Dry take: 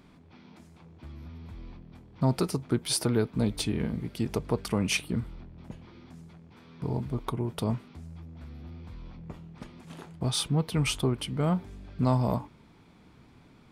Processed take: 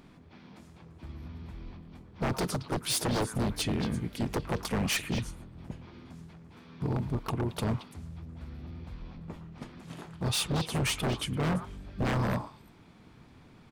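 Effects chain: delay with a stepping band-pass 0.113 s, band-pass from 1400 Hz, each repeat 1.4 oct, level -7 dB; harmoniser -5 st -7 dB, +3 st -14 dB; wavefolder -23 dBFS

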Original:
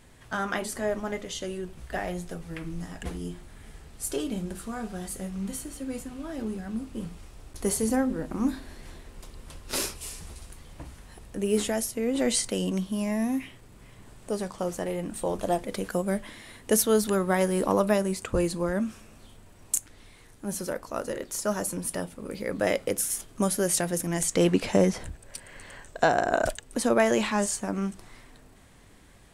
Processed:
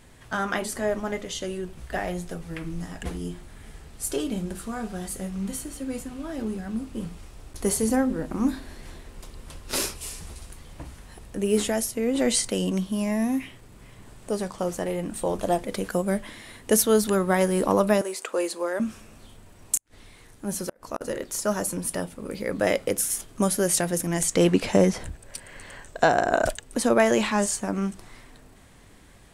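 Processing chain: 18.01–18.8 HPF 370 Hz 24 dB/oct; 19.75–21.01 flipped gate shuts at -18 dBFS, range -34 dB; gain +2.5 dB

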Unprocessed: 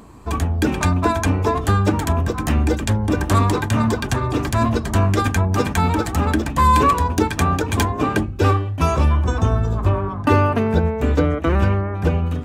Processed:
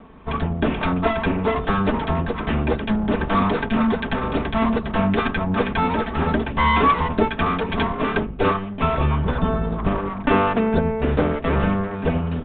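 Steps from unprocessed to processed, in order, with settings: minimum comb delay 4.5 ms; downsampling 8000 Hz

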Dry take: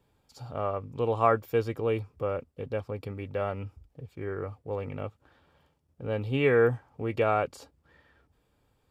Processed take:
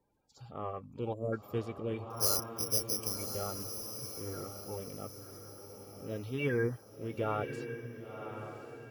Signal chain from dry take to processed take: bin magnitudes rounded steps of 30 dB; 2.1–3.16 careless resampling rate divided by 8×, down none, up zero stuff; on a send: diffused feedback echo 1.055 s, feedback 42%, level -8 dB; 1.13–1.33 on the sum: spectral gain 680–6900 Hz -28 dB; gain -8 dB

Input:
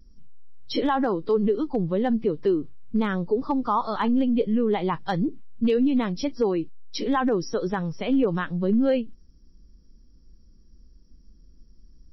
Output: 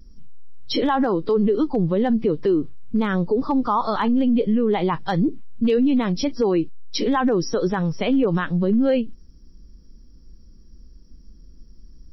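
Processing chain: limiter -18.5 dBFS, peak gain reduction 5.5 dB; gain +6.5 dB

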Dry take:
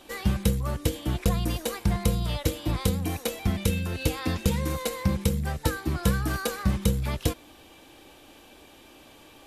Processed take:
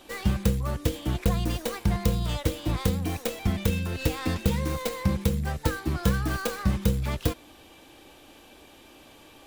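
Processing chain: tracing distortion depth 0.38 ms

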